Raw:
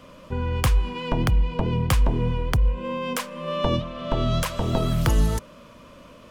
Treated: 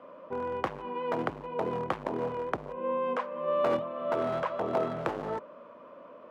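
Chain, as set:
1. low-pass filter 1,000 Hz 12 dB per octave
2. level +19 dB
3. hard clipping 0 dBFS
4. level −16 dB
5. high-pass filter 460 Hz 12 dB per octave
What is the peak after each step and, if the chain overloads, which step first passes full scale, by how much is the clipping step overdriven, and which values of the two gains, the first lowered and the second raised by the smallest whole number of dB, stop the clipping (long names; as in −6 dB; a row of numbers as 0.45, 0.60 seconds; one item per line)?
−9.0, +10.0, 0.0, −16.0, −14.0 dBFS
step 2, 10.0 dB
step 2 +9 dB, step 4 −6 dB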